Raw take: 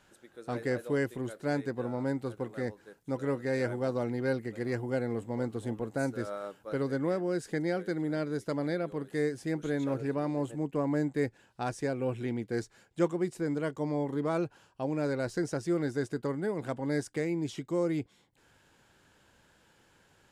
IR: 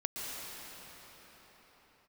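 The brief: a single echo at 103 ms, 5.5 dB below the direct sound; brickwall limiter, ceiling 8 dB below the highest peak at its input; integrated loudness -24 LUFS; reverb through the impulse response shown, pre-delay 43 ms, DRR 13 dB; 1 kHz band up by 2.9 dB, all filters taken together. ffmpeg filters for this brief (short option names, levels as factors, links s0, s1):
-filter_complex "[0:a]equalizer=f=1000:t=o:g=4,alimiter=limit=0.0668:level=0:latency=1,aecho=1:1:103:0.531,asplit=2[s0][s1];[1:a]atrim=start_sample=2205,adelay=43[s2];[s1][s2]afir=irnorm=-1:irlink=0,volume=0.141[s3];[s0][s3]amix=inputs=2:normalize=0,volume=2.82"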